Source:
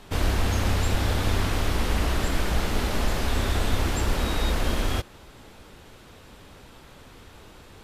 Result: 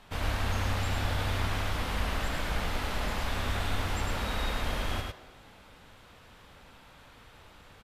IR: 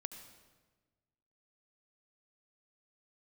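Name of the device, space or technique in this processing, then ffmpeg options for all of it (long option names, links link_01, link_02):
filtered reverb send: -filter_complex "[0:a]aecho=1:1:104:0.668,asplit=2[link_01][link_02];[link_02]highpass=frequency=350:width=0.5412,highpass=frequency=350:width=1.3066,lowpass=4400[link_03];[1:a]atrim=start_sample=2205[link_04];[link_03][link_04]afir=irnorm=-1:irlink=0,volume=0dB[link_05];[link_01][link_05]amix=inputs=2:normalize=0,volume=-9dB"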